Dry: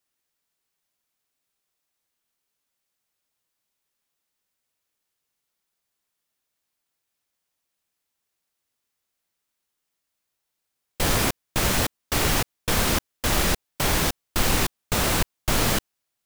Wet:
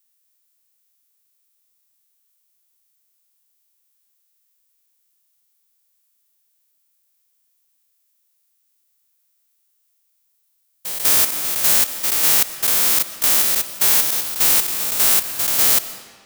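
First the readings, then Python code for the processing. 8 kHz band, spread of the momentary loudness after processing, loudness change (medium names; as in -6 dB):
+9.5 dB, 5 LU, +9.0 dB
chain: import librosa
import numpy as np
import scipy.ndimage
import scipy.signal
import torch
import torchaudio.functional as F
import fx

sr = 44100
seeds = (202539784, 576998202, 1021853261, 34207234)

y = fx.spec_steps(x, sr, hold_ms=200)
y = fx.riaa(y, sr, side='recording')
y = fx.rev_freeverb(y, sr, rt60_s=1.7, hf_ratio=0.8, predelay_ms=85, drr_db=13.5)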